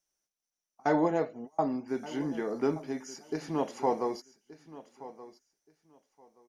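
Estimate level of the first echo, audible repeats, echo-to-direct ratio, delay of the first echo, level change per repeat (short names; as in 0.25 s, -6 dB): -17.0 dB, 2, -17.0 dB, 1.175 s, -14.5 dB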